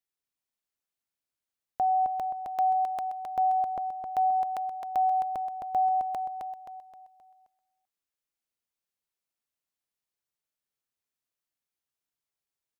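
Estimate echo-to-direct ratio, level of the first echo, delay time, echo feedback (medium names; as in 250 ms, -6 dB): -4.0 dB, -5.0 dB, 263 ms, 42%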